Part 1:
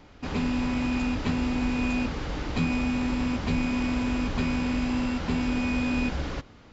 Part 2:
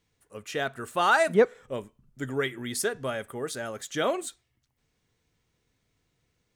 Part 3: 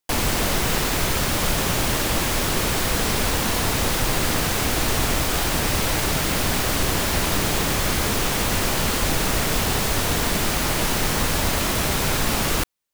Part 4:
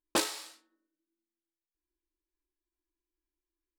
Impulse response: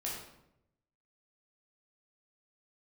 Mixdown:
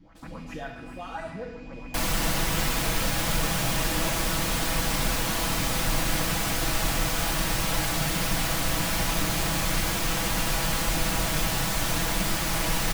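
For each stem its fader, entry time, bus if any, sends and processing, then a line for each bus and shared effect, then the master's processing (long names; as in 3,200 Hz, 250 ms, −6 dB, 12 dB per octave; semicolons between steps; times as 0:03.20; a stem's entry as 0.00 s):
−6.0 dB, 0.00 s, bus A, send −7.5 dB, downward compressor 2 to 1, threshold −34 dBFS, peak gain reduction 7.5 dB
−4.0 dB, 0.00 s, bus A, send −12.5 dB, speech leveller within 4 dB 0.5 s
−8.5 dB, 1.85 s, no bus, send −5 dB, no processing
−15.0 dB, 0.00 s, no bus, no send, brickwall limiter −22.5 dBFS, peak gain reduction 7.5 dB; hard clipping −32.5 dBFS, distortion −10 dB; automatic ducking −10 dB, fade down 0.30 s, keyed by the second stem
bus A: 0.0 dB, auto-filter low-pass saw up 7.5 Hz 220–2,400 Hz; downward compressor, threshold −38 dBFS, peak gain reduction 18.5 dB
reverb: on, RT60 0.85 s, pre-delay 11 ms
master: parametric band 400 Hz −13.5 dB 0.27 octaves; comb filter 6.1 ms, depth 51%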